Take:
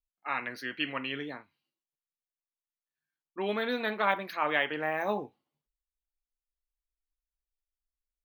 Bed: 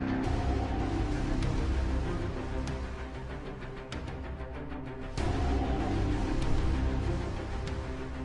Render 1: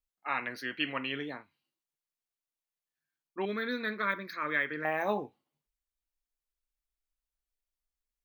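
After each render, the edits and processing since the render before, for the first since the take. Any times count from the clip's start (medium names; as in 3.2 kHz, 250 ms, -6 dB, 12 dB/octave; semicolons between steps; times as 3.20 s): 3.45–4.85 s: static phaser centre 2.9 kHz, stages 6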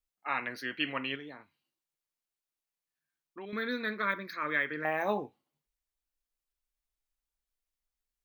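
1.15–3.53 s: compression 3:1, threshold -43 dBFS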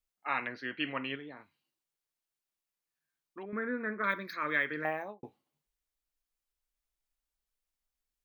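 0.47–1.37 s: distance through air 200 m; 3.43–4.04 s: inverse Chebyshev low-pass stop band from 4.6 kHz, stop band 50 dB; 4.79–5.23 s: studio fade out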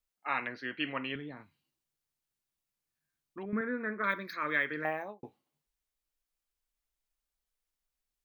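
1.15–3.61 s: tone controls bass +10 dB, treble +1 dB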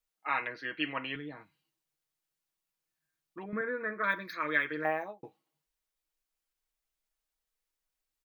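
tone controls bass -5 dB, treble -1 dB; comb 6.3 ms, depth 56%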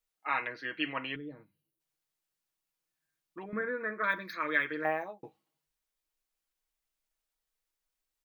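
1.16–1.80 s: time-frequency box 620–9100 Hz -12 dB; hum notches 50/100/150/200 Hz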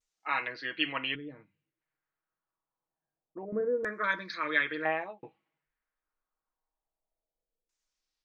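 vibrato 0.44 Hz 26 cents; LFO low-pass saw down 0.26 Hz 460–7000 Hz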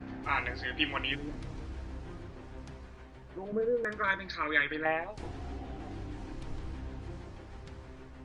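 add bed -11.5 dB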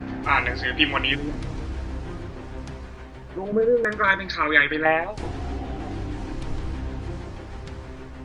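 trim +10.5 dB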